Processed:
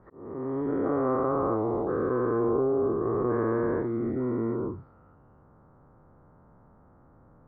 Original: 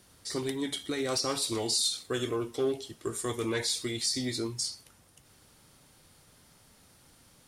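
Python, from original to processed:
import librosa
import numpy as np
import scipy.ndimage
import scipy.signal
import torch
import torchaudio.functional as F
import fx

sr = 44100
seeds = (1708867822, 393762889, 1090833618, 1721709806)

y = fx.spec_dilate(x, sr, span_ms=480)
y = scipy.signal.sosfilt(scipy.signal.butter(6, 1300.0, 'lowpass', fs=sr, output='sos'), y)
y = fx.auto_swell(y, sr, attack_ms=620.0)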